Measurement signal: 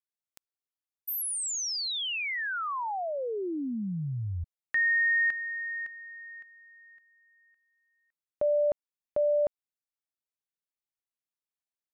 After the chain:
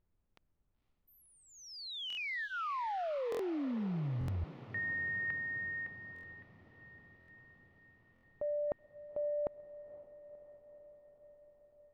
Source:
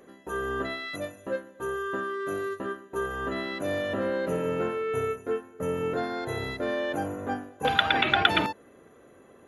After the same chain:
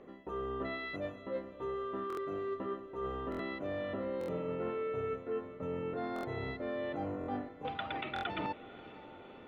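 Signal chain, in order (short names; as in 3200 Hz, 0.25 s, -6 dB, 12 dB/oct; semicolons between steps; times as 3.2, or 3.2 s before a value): notch 1600 Hz, Q 6.2; reverse; compressor 6:1, threshold -34 dBFS; reverse; added noise brown -77 dBFS; air absorption 290 m; on a send: diffused feedback echo 0.508 s, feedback 69%, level -16 dB; on the sum: stuck buffer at 2.08/3.3/4.19/6.14/7.19/8.14, samples 1024, times 3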